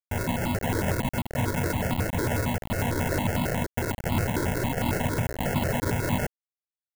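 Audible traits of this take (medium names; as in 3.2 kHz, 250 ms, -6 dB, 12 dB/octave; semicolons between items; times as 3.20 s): aliases and images of a low sample rate 1.2 kHz, jitter 0%; chopped level 0.74 Hz, depth 65%, duty 90%; a quantiser's noise floor 6-bit, dither none; notches that jump at a steady rate 11 Hz 760–1600 Hz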